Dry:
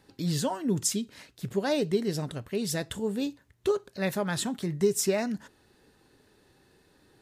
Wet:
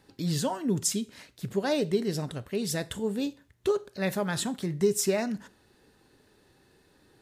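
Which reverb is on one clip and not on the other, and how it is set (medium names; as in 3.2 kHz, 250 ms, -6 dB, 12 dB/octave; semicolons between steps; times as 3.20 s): Schroeder reverb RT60 0.39 s, combs from 32 ms, DRR 19 dB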